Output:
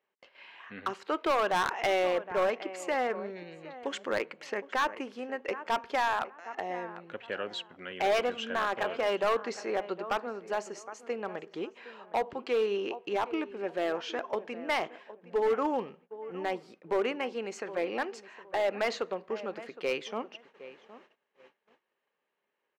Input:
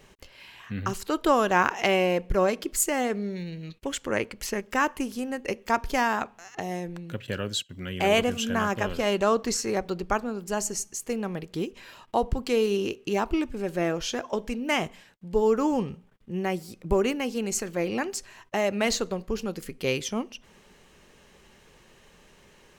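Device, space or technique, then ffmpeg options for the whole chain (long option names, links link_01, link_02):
walkie-talkie: -filter_complex "[0:a]asettb=1/sr,asplit=3[link_01][link_02][link_03];[link_01]atrim=end=3.724[link_04];[link_02]atrim=start=3.72:end=4.19,asetpts=PTS-STARTPTS,afade=type=in:duration=0.004:curve=qsin,afade=type=out:start_time=0.466:duration=0.004:curve=qsin,bass=frequency=250:gain=6,treble=frequency=4000:gain=8[link_05];[link_03]atrim=start=4.186[link_06];[link_04][link_05]acrossfade=duration=0.004:curve1=hsin:curve2=qsin[link_07];[link_07][link_06]acrossfade=duration=0.004:curve1=qsin:curve2=hsin,highpass=460,lowpass=2400,asplit=2[link_08][link_09];[link_09]adelay=764,lowpass=frequency=2100:poles=1,volume=-16dB,asplit=2[link_10][link_11];[link_11]adelay=764,lowpass=frequency=2100:poles=1,volume=0.26,asplit=2[link_12][link_13];[link_13]adelay=764,lowpass=frequency=2100:poles=1,volume=0.26[link_14];[link_08][link_10][link_12][link_14]amix=inputs=4:normalize=0,asoftclip=type=hard:threshold=-22.5dB,agate=range=-23dB:threshold=-56dB:ratio=16:detection=peak"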